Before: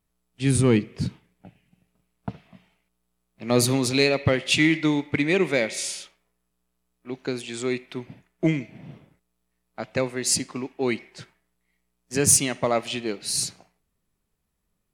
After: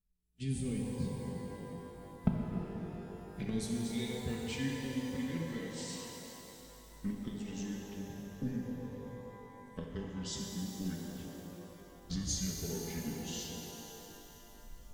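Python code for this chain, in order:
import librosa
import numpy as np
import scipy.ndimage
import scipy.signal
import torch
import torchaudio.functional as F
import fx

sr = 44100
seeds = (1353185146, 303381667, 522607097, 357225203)

y = fx.pitch_glide(x, sr, semitones=-7.5, runs='starting unshifted')
y = fx.recorder_agc(y, sr, target_db=-14.5, rise_db_per_s=22.0, max_gain_db=30)
y = fx.tone_stack(y, sr, knobs='10-0-1')
y = y + 0.54 * np.pad(y, (int(4.6 * sr / 1000.0), 0))[:len(y)]
y = fx.rev_shimmer(y, sr, seeds[0], rt60_s=3.5, semitones=12, shimmer_db=-8, drr_db=-0.5)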